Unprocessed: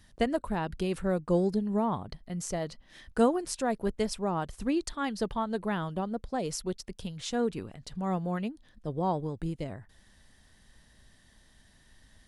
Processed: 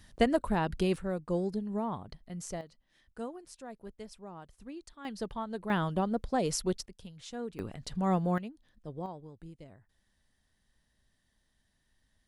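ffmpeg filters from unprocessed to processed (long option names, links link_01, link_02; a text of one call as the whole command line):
ffmpeg -i in.wav -af "asetnsamples=nb_out_samples=441:pad=0,asendcmd='0.96 volume volume -5.5dB;2.61 volume volume -16dB;5.05 volume volume -6dB;5.7 volume volume 2.5dB;6.86 volume volume -10dB;7.59 volume volume 2.5dB;8.38 volume volume -8dB;9.06 volume volume -14.5dB',volume=2dB" out.wav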